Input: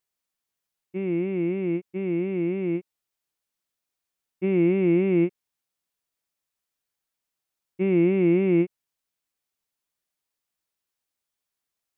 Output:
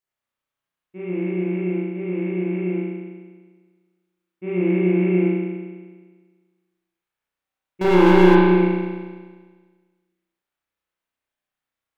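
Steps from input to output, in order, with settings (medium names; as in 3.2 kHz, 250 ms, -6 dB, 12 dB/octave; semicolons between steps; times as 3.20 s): peaking EQ 1.3 kHz +3 dB 1.7 oct; 7.81–8.35 s: waveshaping leveller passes 5; spring tank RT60 1.5 s, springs 33 ms, chirp 60 ms, DRR -9 dB; trim -7.5 dB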